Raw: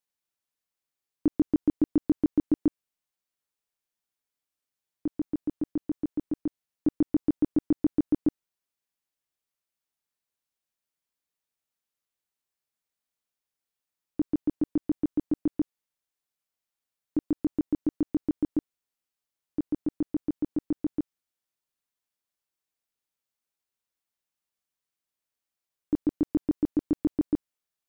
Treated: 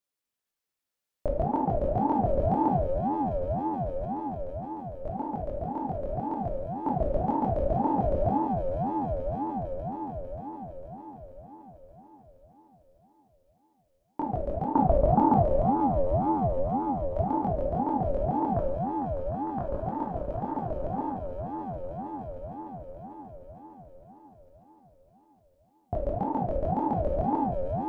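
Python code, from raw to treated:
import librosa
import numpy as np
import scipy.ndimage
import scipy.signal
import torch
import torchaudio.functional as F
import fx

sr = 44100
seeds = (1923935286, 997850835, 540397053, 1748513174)

y = fx.transient(x, sr, attack_db=9, sustain_db=-10, at=(14.72, 15.39), fade=0.02)
y = fx.spec_box(y, sr, start_s=18.52, length_s=1.25, low_hz=570.0, high_hz=1400.0, gain_db=10)
y = fx.echo_swell(y, sr, ms=151, loudest=5, wet_db=-9.5)
y = fx.room_shoebox(y, sr, seeds[0], volume_m3=250.0, walls='mixed', distance_m=1.2)
y = fx.ring_lfo(y, sr, carrier_hz=430.0, swing_pct=40, hz=1.9)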